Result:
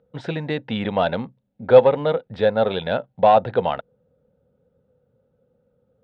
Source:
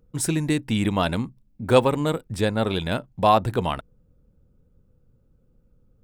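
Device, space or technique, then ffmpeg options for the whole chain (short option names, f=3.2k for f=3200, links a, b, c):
overdrive pedal into a guitar cabinet: -filter_complex "[0:a]asplit=2[a][b];[b]highpass=f=720:p=1,volume=15dB,asoftclip=type=tanh:threshold=-2dB[c];[a][c]amix=inputs=2:normalize=0,lowpass=f=1.2k:p=1,volume=-6dB,highpass=96,equalizer=f=320:t=q:w=4:g=-10,equalizer=f=520:t=q:w=4:g=7,equalizer=f=760:t=q:w=4:g=3,equalizer=f=1.1k:t=q:w=4:g=-8,equalizer=f=2.4k:t=q:w=4:g=-4,equalizer=f=3.7k:t=q:w=4:g=4,lowpass=f=3.9k:w=0.5412,lowpass=f=3.9k:w=1.3066,volume=-1dB"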